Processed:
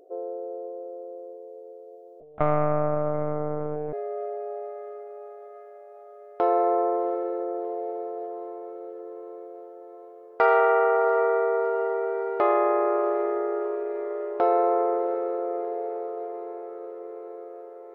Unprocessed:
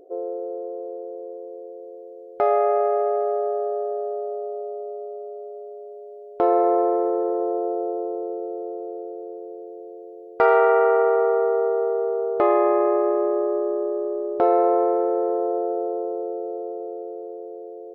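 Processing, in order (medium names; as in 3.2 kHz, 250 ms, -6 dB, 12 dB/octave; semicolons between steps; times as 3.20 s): bass shelf 380 Hz -11 dB; echo that smears into a reverb 718 ms, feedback 67%, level -14 dB; 2.20–3.93 s: monotone LPC vocoder at 8 kHz 150 Hz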